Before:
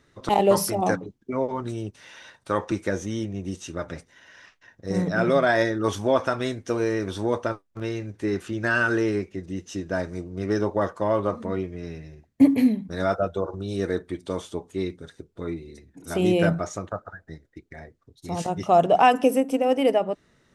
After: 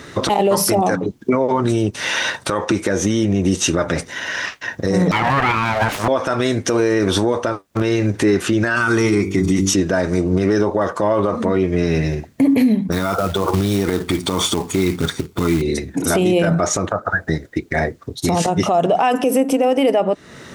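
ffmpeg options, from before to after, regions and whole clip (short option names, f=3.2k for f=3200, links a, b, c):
-filter_complex "[0:a]asettb=1/sr,asplit=3[a][b][c];[a]atrim=end=5.114[d];[b]atrim=start=5.11:end=6.08,asetpts=PTS-STARTPTS,afade=t=in:d=0.004:c=qsin,afade=t=out:st=0.966:d=0.004:c=qsin,highpass=340,aeval=exprs='abs(val(0))':c=same,acrossover=split=2700[e][f];[f]acompressor=threshold=-47dB:ratio=4:attack=1:release=60[g];[e][g]amix=inputs=2:normalize=0[h];[c]atrim=start=6.076[i];[d][h]acrossfade=d=0.004:c1=hsin:c2=qsin[j];[j][i]acrossfade=d=0.004:c1=qsin:c2=hsin,asettb=1/sr,asplit=3[k][l][m];[k]atrim=end=8.764[n];[l]atrim=start=8.76:end=9.74,asetpts=PTS-STARTPTS,afade=t=in:d=0.004:c=qsin,afade=t=out:st=0.976:d=0.004:c=qsin,highshelf=f=7.4k:g=10.5,aecho=1:1:0.9:0.62,atrim=end_sample=43218,bandreject=f=48.1:t=h:w=4,bandreject=f=96.2:t=h:w=4,bandreject=f=144.3:t=h:w=4,bandreject=f=192.4:t=h:w=4,bandreject=f=240.5:t=h:w=4,bandreject=f=288.6:t=h:w=4,bandreject=f=336.7:t=h:w=4,bandreject=f=384.8:t=h:w=4,bandreject=f=432.9:t=h:w=4,bandreject=f=481:t=h:w=4,bandreject=f=529.1:t=h:w=4,bandreject=f=577.2:t=h:w=4,bandreject=f=625.3:t=h:w=4[o];[m]atrim=start=9.736[p];[n][o]acrossfade=d=0.004:c1=hsin:c2=qsin[q];[q][p]acrossfade=d=0.004:c1=qsin:c2=hsin,asettb=1/sr,asplit=3[r][s][t];[r]atrim=end=12.924[u];[s]atrim=start=12.92:end=15.62,asetpts=PTS-STARTPTS,afade=t=in:d=0.004:c=qsin,afade=t=out:st=2.696:d=0.004:c=qsin,aecho=1:1:0.9:0.49,atrim=end_sample=119070,acompressor=threshold=-28dB:ratio=6:attack=3.2:release=140:knee=1:detection=peak,acrusher=bits=4:mode=log:mix=0:aa=0.000001[v];[t]atrim=start=15.616[w];[u][v]acrossfade=d=0.004:c1=hsin:c2=qsin[x];[x][w]acrossfade=d=0.004:c1=qsin:c2=hsin,highpass=f=120:p=1,acompressor=threshold=-38dB:ratio=3,alimiter=level_in=32.5dB:limit=-1dB:release=50:level=0:latency=1,volume=-6.5dB"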